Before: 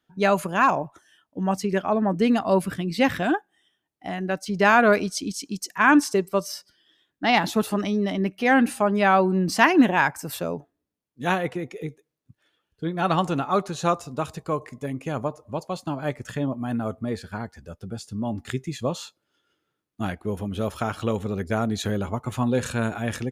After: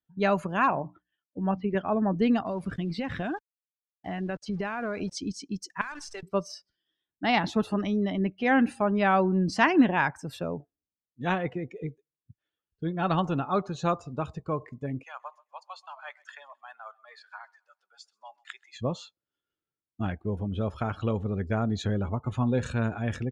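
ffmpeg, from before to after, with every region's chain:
-filter_complex "[0:a]asettb=1/sr,asplit=3[s0][s1][s2];[s0]atrim=end=0.684[s3];[s1]atrim=start=0.68:end=1.75,asetpts=PTS-STARTPTS,afade=t=in:d=0.004:c=qsin,afade=t=out:st=1.066:d=0.004:c=qsin,lowpass=f=3300:w=0.5412,lowpass=f=3300:w=1.3066,agate=range=0.0224:threshold=0.00158:ratio=3:release=100:detection=peak,bandreject=f=60:t=h:w=6,bandreject=f=120:t=h:w=6,bandreject=f=180:t=h:w=6,bandreject=f=240:t=h:w=6,bandreject=f=300:t=h:w=6[s4];[s2]atrim=start=1.746[s5];[s3][s4]acrossfade=d=0.004:c1=hsin:c2=qsin[s6];[s6][s5]acrossfade=d=0.004:c1=qsin:c2=hsin,asettb=1/sr,asplit=3[s7][s8][s9];[s7]atrim=end=2.464[s10];[s8]atrim=start=2.46:end=5.14,asetpts=PTS-STARTPTS,afade=t=in:d=0.004:c=qsin,afade=t=out:st=2.676:d=0.004:c=qsin,acompressor=threshold=0.0708:ratio=12:attack=3.2:release=140:knee=1:detection=peak,aeval=exprs='val(0)*gte(abs(val(0)),0.0106)':c=same[s11];[s9]atrim=start=5.136[s12];[s10][s11]acrossfade=d=0.004:c1=hsin:c2=qsin[s13];[s13][s12]acrossfade=d=0.004:c1=qsin:c2=hsin,asettb=1/sr,asplit=3[s14][s15][s16];[s14]atrim=end=5.814[s17];[s15]atrim=start=5.81:end=6.23,asetpts=PTS-STARTPTS,afade=t=in:d=0.004:c=qsin,afade=t=out:st=0.416:d=0.004:c=qsin,highpass=950,acompressor=threshold=0.0398:ratio=16:attack=3.2:release=140:knee=1:detection=peak,acrusher=bits=7:dc=4:mix=0:aa=0.000001[s18];[s16]atrim=start=6.226[s19];[s17][s18]acrossfade=d=0.004:c1=hsin:c2=qsin[s20];[s20][s19]acrossfade=d=0.004:c1=qsin:c2=hsin,asettb=1/sr,asplit=3[s21][s22][s23];[s21]atrim=end=15.034[s24];[s22]atrim=start=15.03:end=18.76,asetpts=PTS-STARTPTS,afade=t=in:d=0.004:c=qsin,afade=t=out:st=3.726:d=0.004:c=qsin,highpass=f=910:w=0.5412,highpass=f=910:w=1.3066,aecho=1:1:131|262|393|524:0.133|0.0573|0.0247|0.0106,atrim=end_sample=164493[s25];[s23]atrim=start=18.756[s26];[s24][s25]acrossfade=d=0.004:c1=hsin:c2=qsin[s27];[s27][s26]acrossfade=d=0.004:c1=qsin:c2=hsin,afftdn=nr=14:nf=-42,lowpass=6000,lowshelf=f=110:g=11,volume=0.562"

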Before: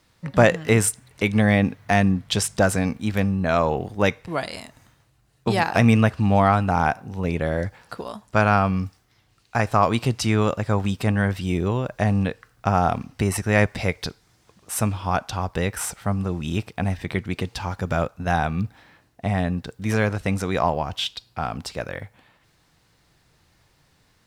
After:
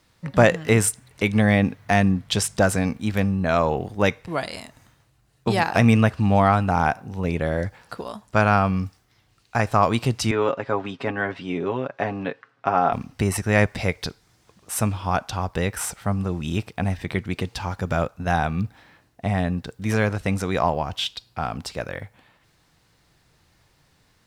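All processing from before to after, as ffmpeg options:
-filter_complex "[0:a]asettb=1/sr,asplit=3[s0][s1][s2];[s0]atrim=end=10.314[s3];[s1]atrim=start=10.31:end=12.93,asetpts=PTS-STARTPTS,afade=t=in:d=0.004:c=qsin,afade=t=out:st=2.616:d=0.004:c=qsin,highpass=250,lowpass=2900,aecho=1:1:7.3:0.55,atrim=end_sample=115542[s4];[s2]atrim=start=12.926[s5];[s3][s4]acrossfade=d=0.004:c1=hsin:c2=qsin[s6];[s6][s5]acrossfade=d=0.004:c1=qsin:c2=hsin"

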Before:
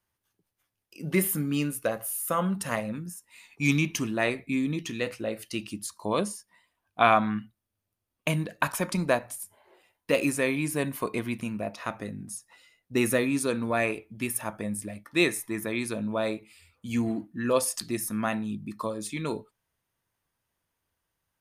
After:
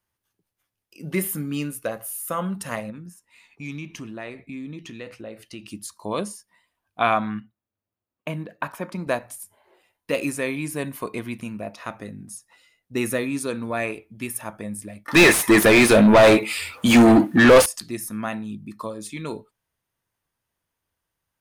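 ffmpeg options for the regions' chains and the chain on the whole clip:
-filter_complex "[0:a]asettb=1/sr,asplit=3[s0][s1][s2];[s0]atrim=end=2.904[s3];[s1]atrim=start=2.9:end=5.66,asetpts=PTS-STARTPTS,afade=t=in:d=0.004:c=qsin,afade=t=out:st=2.756:d=0.004:c=qsin,lowpass=f=3800:p=1,acompressor=threshold=0.0141:ratio=2:attack=3.2:release=140:knee=1:detection=peak[s4];[s2]atrim=start=5.656[s5];[s3][s4]acrossfade=d=0.004:c1=hsin:c2=qsin[s6];[s6][s5]acrossfade=d=0.004:c1=qsin:c2=hsin,asettb=1/sr,asplit=3[s7][s8][s9];[s7]atrim=end=7.404[s10];[s8]atrim=start=7.4:end=9.07,asetpts=PTS-STARTPTS,afade=t=in:d=0.004:c=qsin,afade=t=out:st=1.666:d=0.004:c=qsin,highpass=f=170:p=1,equalizer=f=8400:w=0.36:g=-14.5[s11];[s9]atrim=start=9.066[s12];[s10][s11]acrossfade=d=0.004:c1=hsin:c2=qsin[s13];[s13][s12]acrossfade=d=0.004:c1=qsin:c2=hsin,asettb=1/sr,asplit=3[s14][s15][s16];[s14]atrim=end=15.084[s17];[s15]atrim=start=15.08:end=17.66,asetpts=PTS-STARTPTS,afade=t=in:d=0.004:c=qsin,afade=t=out:st=2.576:d=0.004:c=qsin,highshelf=f=8300:g=10.5,acontrast=85,asplit=2[s18][s19];[s19]highpass=f=720:p=1,volume=35.5,asoftclip=type=tanh:threshold=0.668[s20];[s18][s20]amix=inputs=2:normalize=0,lowpass=f=2100:p=1,volume=0.501[s21];[s16]atrim=start=17.656[s22];[s17][s21]acrossfade=d=0.004:c1=hsin:c2=qsin[s23];[s23][s22]acrossfade=d=0.004:c1=qsin:c2=hsin"

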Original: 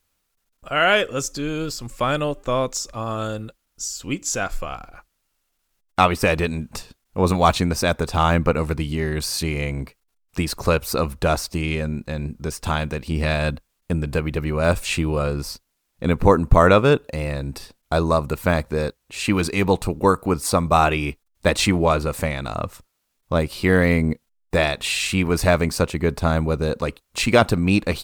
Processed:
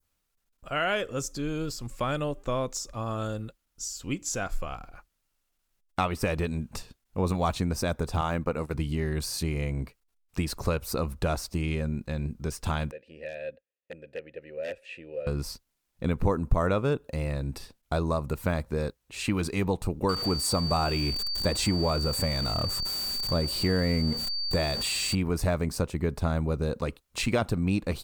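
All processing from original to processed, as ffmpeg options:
-filter_complex "[0:a]asettb=1/sr,asplit=3[s0][s1][s2];[s0]atrim=end=8.214[s3];[s1]atrim=start=8.21:end=8.74,asetpts=PTS-STARTPTS,afade=t=in:d=0.004:c=qsin,afade=t=out:st=0.526:d=0.004:c=qsin,agate=range=0.251:threshold=0.0501:ratio=16:release=100:detection=peak,lowshelf=f=150:g=-10[s4];[s2]atrim=start=8.736[s5];[s3][s4]acrossfade=d=0.004:c1=hsin:c2=qsin[s6];[s6][s5]acrossfade=d=0.004:c1=qsin:c2=hsin,asettb=1/sr,asplit=3[s7][s8][s9];[s7]atrim=end=12.914[s10];[s8]atrim=start=12.91:end=15.27,asetpts=PTS-STARTPTS,afade=t=in:d=0.004:c=qsin,afade=t=out:st=2.356:d=0.004:c=qsin,aeval=exprs='(mod(3.35*val(0)+1,2)-1)/3.35':c=same,asplit=3[s11][s12][s13];[s11]bandpass=f=530:t=q:w=8,volume=1[s14];[s12]bandpass=f=1840:t=q:w=8,volume=0.501[s15];[s13]bandpass=f=2480:t=q:w=8,volume=0.355[s16];[s14][s15][s16]amix=inputs=3:normalize=0[s17];[s9]atrim=start=15.266[s18];[s10][s17]acrossfade=d=0.004:c1=hsin:c2=qsin[s19];[s19][s18]acrossfade=d=0.004:c1=qsin:c2=hsin,asettb=1/sr,asplit=3[s20][s21][s22];[s20]atrim=end=20.094[s23];[s21]atrim=start=20.09:end=25.15,asetpts=PTS-STARTPTS,afade=t=in:d=0.004:c=qsin,afade=t=out:st=5.056:d=0.004:c=qsin,aeval=exprs='val(0)+0.5*0.0531*sgn(val(0))':c=same,aeval=exprs='val(0)+0.1*sin(2*PI*4600*n/s)':c=same,equalizer=f=7900:w=7.7:g=6[s24];[s22]atrim=start=25.146[s25];[s23][s24]acrossfade=d=0.004:c1=hsin:c2=qsin[s26];[s26][s25]acrossfade=d=0.004:c1=qsin:c2=hsin,adynamicequalizer=threshold=0.0158:dfrequency=2700:dqfactor=0.77:tfrequency=2700:tqfactor=0.77:attack=5:release=100:ratio=0.375:range=2.5:mode=cutabove:tftype=bell,acompressor=threshold=0.1:ratio=2,lowshelf=f=200:g=4.5,volume=0.473"

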